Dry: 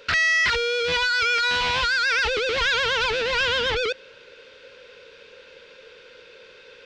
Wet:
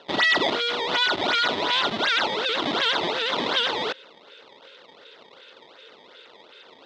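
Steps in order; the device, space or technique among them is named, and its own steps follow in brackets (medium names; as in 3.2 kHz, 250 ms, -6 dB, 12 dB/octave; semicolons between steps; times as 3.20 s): circuit-bent sampling toy (decimation with a swept rate 18×, swing 160% 2.7 Hz; cabinet simulation 470–4000 Hz, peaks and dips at 500 Hz -10 dB, 770 Hz -6 dB, 1.1 kHz -6 dB, 1.6 kHz -7 dB, 2.4 kHz -8 dB, 3.6 kHz +6 dB); trim +5.5 dB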